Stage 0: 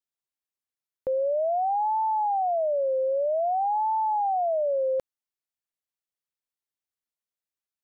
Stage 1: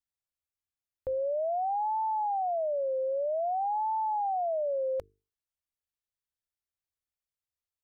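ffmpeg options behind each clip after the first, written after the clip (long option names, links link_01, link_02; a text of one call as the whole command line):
ffmpeg -i in.wav -af "lowshelf=frequency=130:width_type=q:width=1.5:gain=11.5,bandreject=frequency=50:width_type=h:width=6,bandreject=frequency=100:width_type=h:width=6,bandreject=frequency=150:width_type=h:width=6,bandreject=frequency=200:width_type=h:width=6,bandreject=frequency=250:width_type=h:width=6,bandreject=frequency=300:width_type=h:width=6,bandreject=frequency=350:width_type=h:width=6,bandreject=frequency=400:width_type=h:width=6,bandreject=frequency=450:width_type=h:width=6,volume=-4.5dB" out.wav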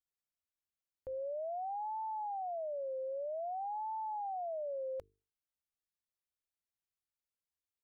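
ffmpeg -i in.wav -af "alimiter=level_in=6.5dB:limit=-24dB:level=0:latency=1:release=264,volume=-6.5dB,volume=-5.5dB" out.wav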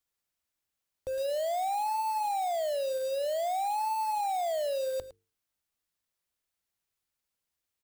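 ffmpeg -i in.wav -filter_complex "[0:a]acrossover=split=320[link_01][link_02];[link_02]acrusher=bits=3:mode=log:mix=0:aa=0.000001[link_03];[link_01][link_03]amix=inputs=2:normalize=0,aecho=1:1:109:0.188,volume=8dB" out.wav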